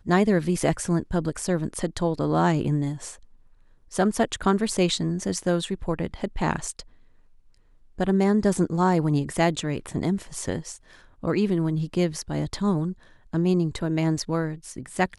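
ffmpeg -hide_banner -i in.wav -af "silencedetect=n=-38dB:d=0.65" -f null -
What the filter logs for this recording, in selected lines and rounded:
silence_start: 3.14
silence_end: 3.92 | silence_duration: 0.78
silence_start: 6.82
silence_end: 7.98 | silence_duration: 1.17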